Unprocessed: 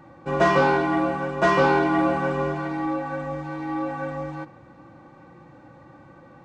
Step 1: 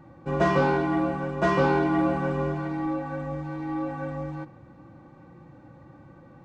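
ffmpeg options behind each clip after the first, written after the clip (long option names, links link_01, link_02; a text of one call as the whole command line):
ffmpeg -i in.wav -af "lowshelf=frequency=320:gain=9,volume=-6dB" out.wav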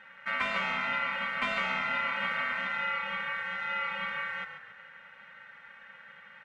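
ffmpeg -i in.wav -filter_complex "[0:a]acompressor=threshold=-25dB:ratio=10,aeval=exprs='val(0)*sin(2*PI*1700*n/s)':channel_layout=same,asplit=5[link_01][link_02][link_03][link_04][link_05];[link_02]adelay=138,afreqshift=-34,volume=-9dB[link_06];[link_03]adelay=276,afreqshift=-68,volume=-18.1dB[link_07];[link_04]adelay=414,afreqshift=-102,volume=-27.2dB[link_08];[link_05]adelay=552,afreqshift=-136,volume=-36.4dB[link_09];[link_01][link_06][link_07][link_08][link_09]amix=inputs=5:normalize=0" out.wav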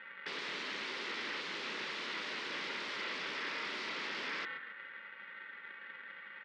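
ffmpeg -i in.wav -af "aeval=exprs='(mod(39.8*val(0)+1,2)-1)/39.8':channel_layout=same,aeval=exprs='(tanh(63.1*val(0)+0.65)-tanh(0.65))/63.1':channel_layout=same,highpass=frequency=200:width=0.5412,highpass=frequency=200:width=1.3066,equalizer=frequency=390:width_type=q:width=4:gain=4,equalizer=frequency=720:width_type=q:width=4:gain=-10,equalizer=frequency=2000:width_type=q:width=4:gain=4,lowpass=frequency=4100:width=0.5412,lowpass=frequency=4100:width=1.3066,volume=3.5dB" out.wav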